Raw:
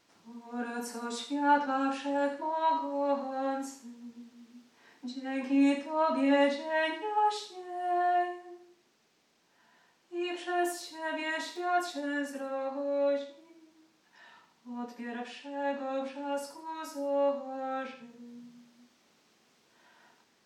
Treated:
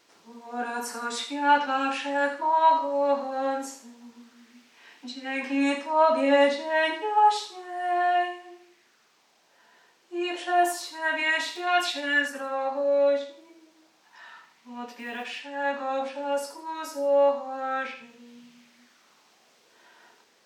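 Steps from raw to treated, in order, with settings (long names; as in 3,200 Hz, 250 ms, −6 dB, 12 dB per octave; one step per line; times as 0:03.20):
0:11.67–0:12.28: parametric band 3,000 Hz +8.5 dB 1 octave
0:14.89–0:15.41: floating-point word with a short mantissa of 4 bits
low-shelf EQ 410 Hz −10.5 dB
auto-filter bell 0.3 Hz 400–2,800 Hz +7 dB
level +6.5 dB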